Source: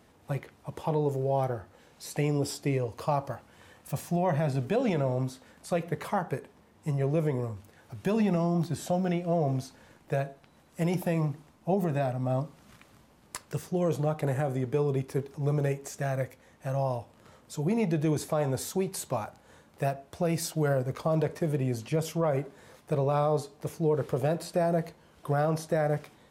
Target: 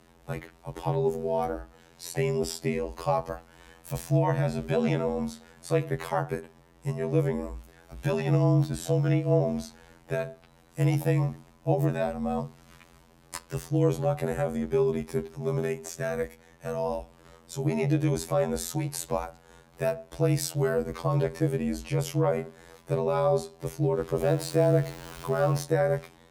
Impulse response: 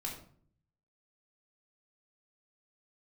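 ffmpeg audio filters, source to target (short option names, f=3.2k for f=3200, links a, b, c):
-filter_complex "[0:a]asettb=1/sr,asplit=3[a][b][c];[a]atrim=end=24.184[d];[b]atrim=start=24.18:end=25.63,asetpts=PTS-STARTPTS,afade=t=in:d=0.004:c=qsin,afade=t=out:st=1.446:d=0.004:c=qsin,aeval=exprs='val(0)+0.5*0.00944*sgn(val(0))':c=same[e];[c]atrim=start=25.626[f];[d][e]acrossfade=d=0.004:c1=hsin:c2=qsin[g];[g][f]acrossfade=d=0.004:c1=qsin:c2=hsin,afftfilt=real='hypot(re,im)*cos(PI*b)':imag='0':win_size=2048:overlap=0.75,afreqshift=-30,volume=5.5dB"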